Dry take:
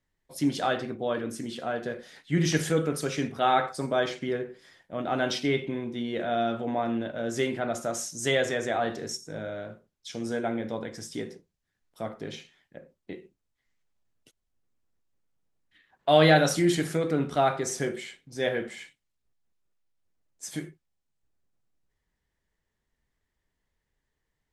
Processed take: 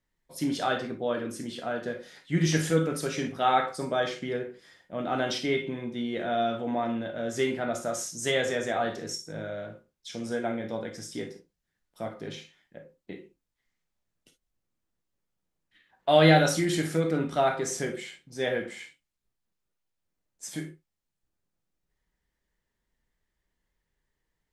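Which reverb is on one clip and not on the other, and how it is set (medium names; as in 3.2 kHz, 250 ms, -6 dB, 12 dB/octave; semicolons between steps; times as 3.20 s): gated-style reverb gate 80 ms flat, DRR 5.5 dB; trim -1.5 dB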